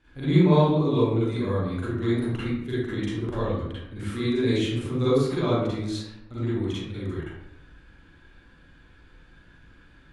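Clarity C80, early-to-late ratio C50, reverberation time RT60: 0.5 dB, -4.5 dB, 0.90 s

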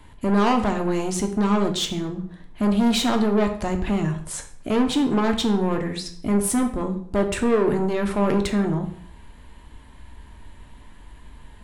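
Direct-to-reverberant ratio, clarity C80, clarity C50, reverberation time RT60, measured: 4.5 dB, 13.0 dB, 10.5 dB, 0.60 s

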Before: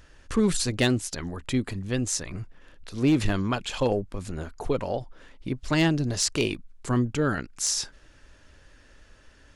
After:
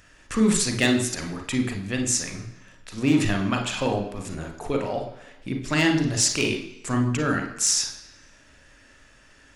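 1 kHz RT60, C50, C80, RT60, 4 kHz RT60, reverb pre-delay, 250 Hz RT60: 1.0 s, 7.0 dB, 11.0 dB, 1.0 s, 0.95 s, 35 ms, 0.95 s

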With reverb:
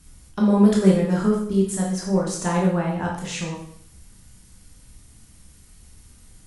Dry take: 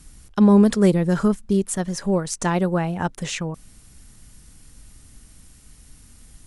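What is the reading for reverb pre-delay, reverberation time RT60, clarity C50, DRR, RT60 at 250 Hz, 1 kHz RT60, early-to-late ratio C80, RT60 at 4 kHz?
7 ms, 0.65 s, 3.5 dB, -3.5 dB, 0.60 s, 0.60 s, 7.5 dB, 0.60 s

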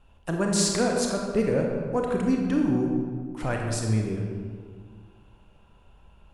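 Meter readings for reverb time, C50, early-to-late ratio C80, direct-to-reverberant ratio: 1.8 s, 2.0 dB, 3.5 dB, 0.5 dB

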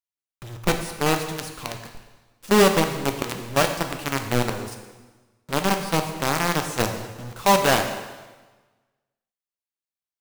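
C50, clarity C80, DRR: 7.5 dB, 9.0 dB, 5.0 dB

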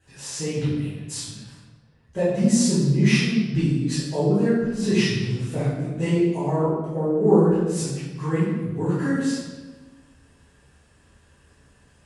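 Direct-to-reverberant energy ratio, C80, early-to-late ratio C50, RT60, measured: -14.0 dB, 2.0 dB, -1.0 dB, 1.2 s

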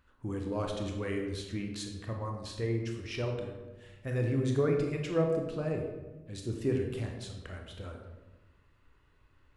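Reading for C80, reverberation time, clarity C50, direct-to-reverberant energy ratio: 6.5 dB, 1.2 s, 4.0 dB, 2.0 dB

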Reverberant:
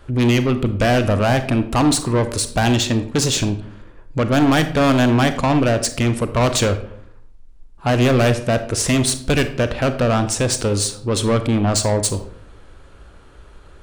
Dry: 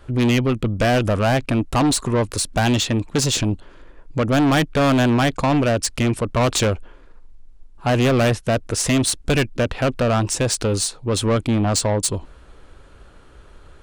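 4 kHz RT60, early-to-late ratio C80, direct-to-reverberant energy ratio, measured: 0.40 s, 15.0 dB, 9.5 dB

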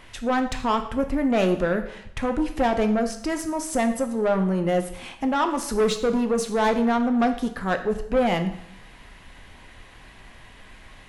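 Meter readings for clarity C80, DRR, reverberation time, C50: 13.5 dB, 6.5 dB, 0.75 s, 10.5 dB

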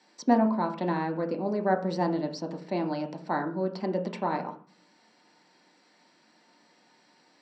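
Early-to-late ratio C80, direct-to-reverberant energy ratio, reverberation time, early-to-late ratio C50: 15.0 dB, 2.0 dB, 0.40 s, 10.5 dB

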